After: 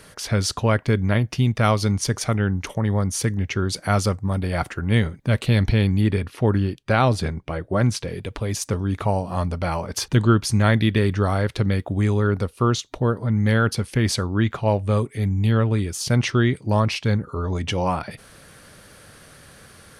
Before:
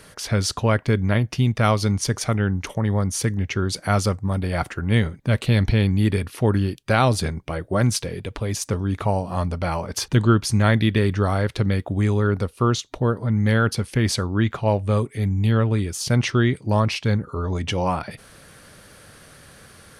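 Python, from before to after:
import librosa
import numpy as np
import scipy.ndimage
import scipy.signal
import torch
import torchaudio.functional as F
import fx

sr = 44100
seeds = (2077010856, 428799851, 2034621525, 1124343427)

y = fx.lowpass(x, sr, hz=3800.0, slope=6, at=(6.01, 8.08))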